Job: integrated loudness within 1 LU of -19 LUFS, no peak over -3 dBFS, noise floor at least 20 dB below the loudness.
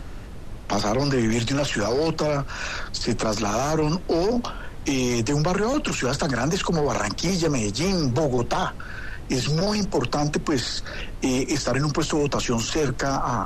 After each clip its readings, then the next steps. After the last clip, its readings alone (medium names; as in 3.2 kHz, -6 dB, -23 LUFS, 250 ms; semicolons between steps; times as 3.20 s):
noise floor -36 dBFS; noise floor target -44 dBFS; loudness -24.0 LUFS; peak level -11.0 dBFS; loudness target -19.0 LUFS
-> noise print and reduce 8 dB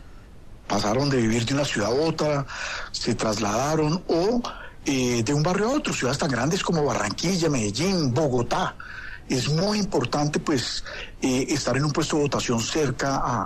noise floor -42 dBFS; noise floor target -44 dBFS
-> noise print and reduce 6 dB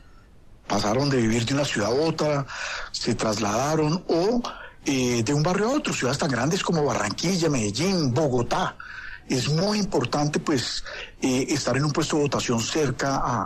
noise floor -47 dBFS; loudness -24.0 LUFS; peak level -11.0 dBFS; loudness target -19.0 LUFS
-> trim +5 dB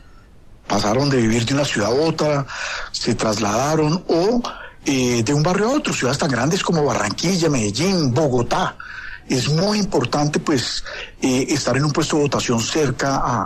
loudness -19.0 LUFS; peak level -6.0 dBFS; noise floor -42 dBFS